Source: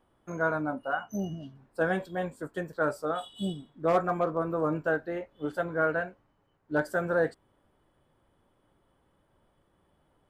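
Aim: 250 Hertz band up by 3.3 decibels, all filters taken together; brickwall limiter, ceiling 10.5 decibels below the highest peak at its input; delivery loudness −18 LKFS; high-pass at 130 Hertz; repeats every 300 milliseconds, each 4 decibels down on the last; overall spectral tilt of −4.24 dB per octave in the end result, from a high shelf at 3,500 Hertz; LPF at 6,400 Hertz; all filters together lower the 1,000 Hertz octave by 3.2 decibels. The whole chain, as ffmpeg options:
ffmpeg -i in.wav -af "highpass=130,lowpass=6400,equalizer=frequency=250:width_type=o:gain=6,equalizer=frequency=1000:width_type=o:gain=-4.5,highshelf=frequency=3500:gain=-8,alimiter=level_in=0.5dB:limit=-24dB:level=0:latency=1,volume=-0.5dB,aecho=1:1:300|600|900|1200|1500|1800|2100|2400|2700:0.631|0.398|0.25|0.158|0.0994|0.0626|0.0394|0.0249|0.0157,volume=15.5dB" out.wav

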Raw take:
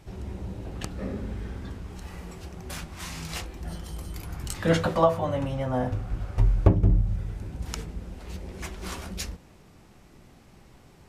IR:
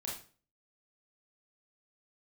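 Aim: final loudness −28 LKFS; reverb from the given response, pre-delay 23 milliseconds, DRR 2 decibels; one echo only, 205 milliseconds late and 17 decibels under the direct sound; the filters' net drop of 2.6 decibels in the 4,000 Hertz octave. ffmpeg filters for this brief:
-filter_complex "[0:a]equalizer=frequency=4000:width_type=o:gain=-3.5,aecho=1:1:205:0.141,asplit=2[link_01][link_02];[1:a]atrim=start_sample=2205,adelay=23[link_03];[link_02][link_03]afir=irnorm=-1:irlink=0,volume=-2dB[link_04];[link_01][link_04]amix=inputs=2:normalize=0,volume=-1dB"

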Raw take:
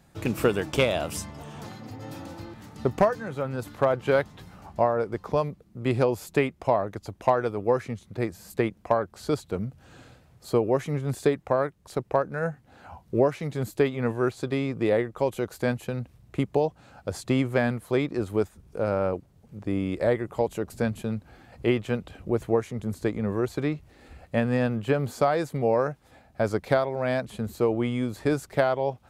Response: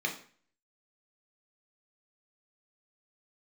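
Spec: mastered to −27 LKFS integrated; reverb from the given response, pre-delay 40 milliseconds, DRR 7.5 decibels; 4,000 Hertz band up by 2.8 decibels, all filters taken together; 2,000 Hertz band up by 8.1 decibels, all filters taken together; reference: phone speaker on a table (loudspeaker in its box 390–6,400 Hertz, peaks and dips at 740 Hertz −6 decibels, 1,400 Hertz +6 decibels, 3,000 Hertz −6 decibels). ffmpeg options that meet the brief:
-filter_complex "[0:a]equalizer=frequency=2000:width_type=o:gain=7.5,equalizer=frequency=4000:width_type=o:gain=4.5,asplit=2[link_01][link_02];[1:a]atrim=start_sample=2205,adelay=40[link_03];[link_02][link_03]afir=irnorm=-1:irlink=0,volume=-14dB[link_04];[link_01][link_04]amix=inputs=2:normalize=0,highpass=frequency=390:width=0.5412,highpass=frequency=390:width=1.3066,equalizer=frequency=740:width_type=q:width=4:gain=-6,equalizer=frequency=1400:width_type=q:width=4:gain=6,equalizer=frequency=3000:width_type=q:width=4:gain=-6,lowpass=frequency=6400:width=0.5412,lowpass=frequency=6400:width=1.3066,volume=0.5dB"

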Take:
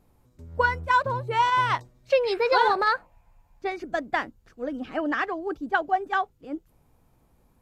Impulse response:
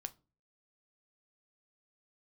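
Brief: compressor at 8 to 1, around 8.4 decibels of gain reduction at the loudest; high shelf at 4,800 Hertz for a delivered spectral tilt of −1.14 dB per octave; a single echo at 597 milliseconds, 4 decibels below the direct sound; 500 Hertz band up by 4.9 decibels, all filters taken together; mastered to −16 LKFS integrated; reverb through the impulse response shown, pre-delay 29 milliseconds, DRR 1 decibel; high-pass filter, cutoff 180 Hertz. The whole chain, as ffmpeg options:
-filter_complex "[0:a]highpass=180,equalizer=frequency=500:width_type=o:gain=5.5,highshelf=frequency=4800:gain=7,acompressor=threshold=-20dB:ratio=8,aecho=1:1:597:0.631,asplit=2[link_01][link_02];[1:a]atrim=start_sample=2205,adelay=29[link_03];[link_02][link_03]afir=irnorm=-1:irlink=0,volume=2dB[link_04];[link_01][link_04]amix=inputs=2:normalize=0,volume=8dB"

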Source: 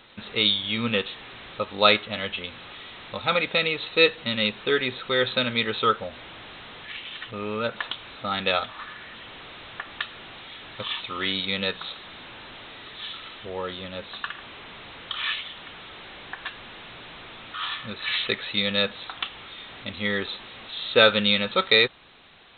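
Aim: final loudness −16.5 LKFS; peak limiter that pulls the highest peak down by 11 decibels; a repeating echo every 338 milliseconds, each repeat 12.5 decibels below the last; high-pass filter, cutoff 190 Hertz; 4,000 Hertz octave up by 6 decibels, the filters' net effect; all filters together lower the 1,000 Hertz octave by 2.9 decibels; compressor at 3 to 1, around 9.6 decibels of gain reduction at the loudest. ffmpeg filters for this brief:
ffmpeg -i in.wav -af "highpass=190,equalizer=frequency=1000:width_type=o:gain=-5,equalizer=frequency=4000:width_type=o:gain=7,acompressor=threshold=-22dB:ratio=3,alimiter=limit=-18dB:level=0:latency=1,aecho=1:1:338|676|1014:0.237|0.0569|0.0137,volume=14dB" out.wav

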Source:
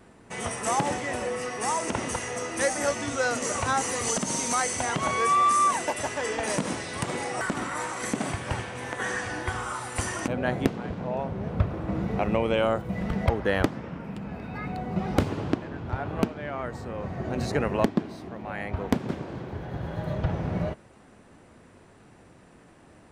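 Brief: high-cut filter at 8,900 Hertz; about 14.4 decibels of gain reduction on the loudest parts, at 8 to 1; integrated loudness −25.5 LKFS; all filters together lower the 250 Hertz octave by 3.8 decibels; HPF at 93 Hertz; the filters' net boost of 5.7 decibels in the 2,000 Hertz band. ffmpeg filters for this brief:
ffmpeg -i in.wav -af "highpass=93,lowpass=8900,equalizer=frequency=250:width_type=o:gain=-5,equalizer=frequency=2000:width_type=o:gain=7,acompressor=threshold=-32dB:ratio=8,volume=10dB" out.wav

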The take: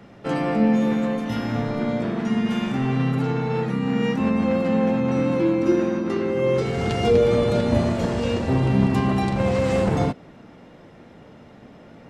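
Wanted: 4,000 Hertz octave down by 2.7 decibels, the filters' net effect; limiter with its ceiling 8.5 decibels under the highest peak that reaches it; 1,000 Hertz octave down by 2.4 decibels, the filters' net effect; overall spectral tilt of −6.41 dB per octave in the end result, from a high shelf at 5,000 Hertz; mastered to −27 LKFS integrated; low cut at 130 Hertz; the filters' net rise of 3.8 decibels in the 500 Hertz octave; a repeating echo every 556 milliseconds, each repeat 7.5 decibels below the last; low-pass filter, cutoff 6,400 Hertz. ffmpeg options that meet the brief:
ffmpeg -i in.wav -af "highpass=130,lowpass=6400,equalizer=frequency=500:width_type=o:gain=5.5,equalizer=frequency=1000:width_type=o:gain=-6,equalizer=frequency=4000:width_type=o:gain=-5.5,highshelf=frequency=5000:gain=5.5,alimiter=limit=-12.5dB:level=0:latency=1,aecho=1:1:556|1112|1668|2224|2780:0.422|0.177|0.0744|0.0312|0.0131,volume=-6dB" out.wav

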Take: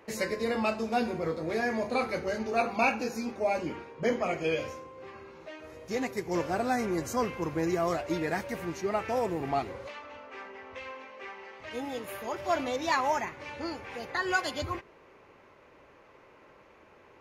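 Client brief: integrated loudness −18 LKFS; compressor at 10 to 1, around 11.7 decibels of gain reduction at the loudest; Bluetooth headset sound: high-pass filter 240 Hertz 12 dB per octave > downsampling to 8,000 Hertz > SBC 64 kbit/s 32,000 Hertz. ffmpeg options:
ffmpeg -i in.wav -af "acompressor=threshold=-34dB:ratio=10,highpass=240,aresample=8000,aresample=44100,volume=22dB" -ar 32000 -c:a sbc -b:a 64k out.sbc

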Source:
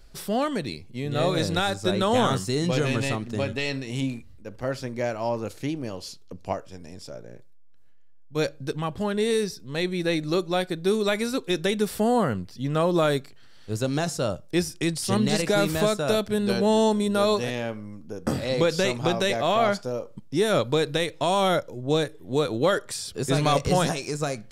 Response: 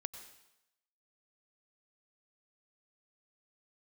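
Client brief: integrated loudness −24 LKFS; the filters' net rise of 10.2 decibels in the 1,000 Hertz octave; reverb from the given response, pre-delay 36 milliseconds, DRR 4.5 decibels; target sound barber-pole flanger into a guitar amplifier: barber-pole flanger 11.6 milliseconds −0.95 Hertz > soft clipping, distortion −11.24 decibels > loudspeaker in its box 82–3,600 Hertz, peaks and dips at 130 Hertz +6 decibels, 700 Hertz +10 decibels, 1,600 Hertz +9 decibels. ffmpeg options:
-filter_complex "[0:a]equalizer=frequency=1000:width_type=o:gain=6.5,asplit=2[link_01][link_02];[1:a]atrim=start_sample=2205,adelay=36[link_03];[link_02][link_03]afir=irnorm=-1:irlink=0,volume=-2.5dB[link_04];[link_01][link_04]amix=inputs=2:normalize=0,asplit=2[link_05][link_06];[link_06]adelay=11.6,afreqshift=-0.95[link_07];[link_05][link_07]amix=inputs=2:normalize=1,asoftclip=threshold=-20.5dB,highpass=82,equalizer=frequency=130:width_type=q:width=4:gain=6,equalizer=frequency=700:width_type=q:width=4:gain=10,equalizer=frequency=1600:width_type=q:width=4:gain=9,lowpass=frequency=3600:width=0.5412,lowpass=frequency=3600:width=1.3066,volume=1dB"

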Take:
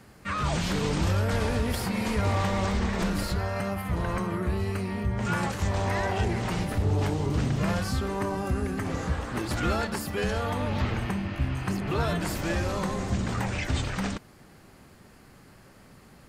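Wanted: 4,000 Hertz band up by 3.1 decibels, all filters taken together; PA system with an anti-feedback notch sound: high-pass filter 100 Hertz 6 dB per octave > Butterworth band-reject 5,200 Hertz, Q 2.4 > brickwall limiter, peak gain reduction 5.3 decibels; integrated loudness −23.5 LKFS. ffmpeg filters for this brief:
ffmpeg -i in.wav -af "highpass=frequency=100:poles=1,asuperstop=centerf=5200:order=8:qfactor=2.4,equalizer=frequency=4000:width_type=o:gain=6,volume=7dB,alimiter=limit=-13.5dB:level=0:latency=1" out.wav

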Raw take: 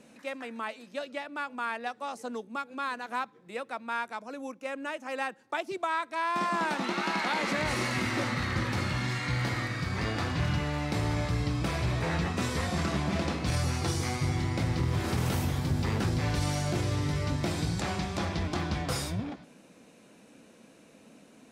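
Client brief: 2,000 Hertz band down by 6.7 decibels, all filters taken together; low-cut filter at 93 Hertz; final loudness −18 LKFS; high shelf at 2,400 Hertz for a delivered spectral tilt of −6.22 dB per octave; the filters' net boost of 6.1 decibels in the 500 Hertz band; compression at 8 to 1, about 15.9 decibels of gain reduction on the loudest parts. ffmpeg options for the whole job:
ffmpeg -i in.wav -af "highpass=93,equalizer=frequency=500:width_type=o:gain=8.5,equalizer=frequency=2000:width_type=o:gain=-5.5,highshelf=frequency=2400:gain=-7.5,acompressor=threshold=-42dB:ratio=8,volume=28dB" out.wav

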